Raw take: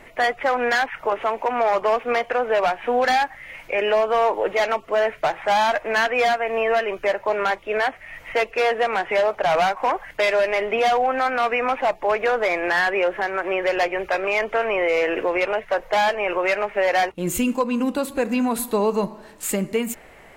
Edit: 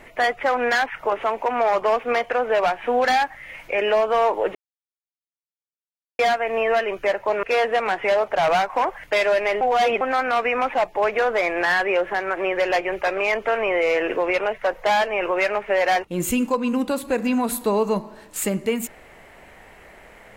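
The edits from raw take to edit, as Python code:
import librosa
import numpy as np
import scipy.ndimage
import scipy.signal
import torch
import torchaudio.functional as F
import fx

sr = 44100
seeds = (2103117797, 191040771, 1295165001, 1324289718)

y = fx.edit(x, sr, fx.silence(start_s=4.55, length_s=1.64),
    fx.cut(start_s=7.43, length_s=1.07),
    fx.reverse_span(start_s=10.68, length_s=0.4), tone=tone)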